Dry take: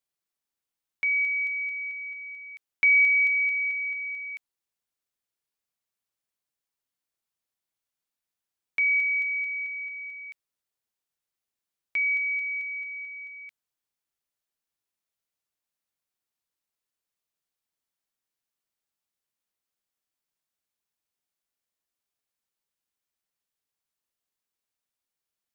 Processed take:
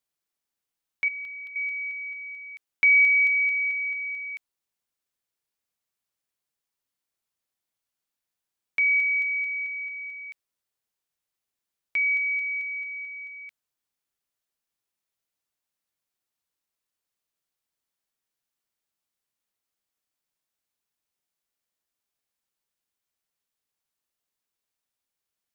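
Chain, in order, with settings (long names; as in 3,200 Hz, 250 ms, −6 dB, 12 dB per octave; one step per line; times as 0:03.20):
0:01.08–0:01.56: phaser with its sweep stopped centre 2,100 Hz, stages 6
level +1.5 dB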